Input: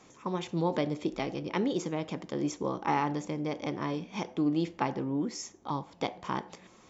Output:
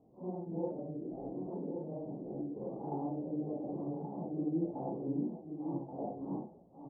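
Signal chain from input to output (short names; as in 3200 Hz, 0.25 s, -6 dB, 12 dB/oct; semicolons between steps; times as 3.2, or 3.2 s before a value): phase scrambler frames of 0.2 s; elliptic low-pass 740 Hz, stop band 70 dB; 0.67–2.92 compressor, threshold -33 dBFS, peak gain reduction 7.5 dB; echo 1.129 s -7 dB; gain -4.5 dB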